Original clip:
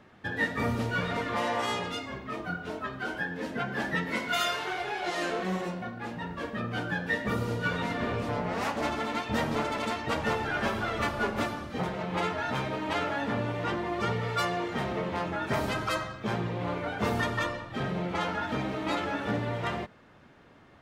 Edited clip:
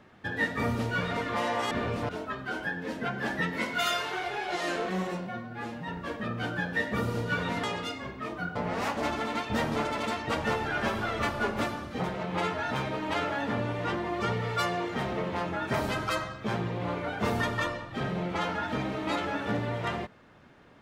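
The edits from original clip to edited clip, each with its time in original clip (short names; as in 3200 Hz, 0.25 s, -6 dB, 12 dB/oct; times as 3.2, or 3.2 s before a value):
1.71–2.63 swap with 7.97–8.35
5.81–6.22 stretch 1.5×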